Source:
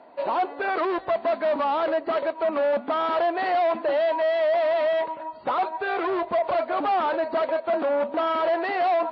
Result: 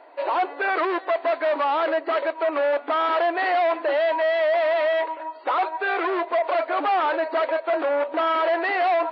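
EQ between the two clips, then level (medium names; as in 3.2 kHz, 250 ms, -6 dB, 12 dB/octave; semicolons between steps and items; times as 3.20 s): brick-wall FIR high-pass 270 Hz; peaking EQ 2 kHz +6 dB 1.5 oct; 0.0 dB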